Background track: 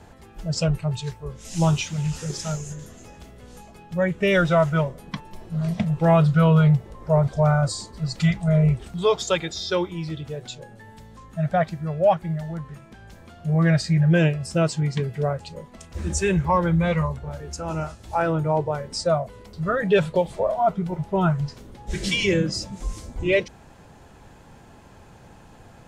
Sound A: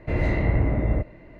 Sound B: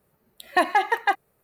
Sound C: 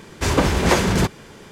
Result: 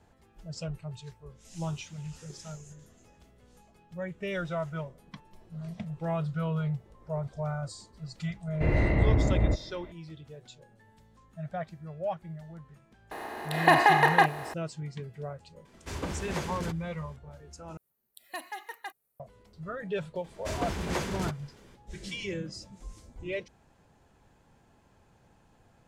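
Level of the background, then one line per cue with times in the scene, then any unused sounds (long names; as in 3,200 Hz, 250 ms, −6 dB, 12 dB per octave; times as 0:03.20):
background track −14.5 dB
0:08.53: mix in A −2 dB
0:13.11: mix in B −3 dB + compressor on every frequency bin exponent 0.4
0:15.65: mix in C −18 dB
0:17.77: overwrite with B −7.5 dB + first-order pre-emphasis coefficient 0.8
0:20.24: mix in C −15 dB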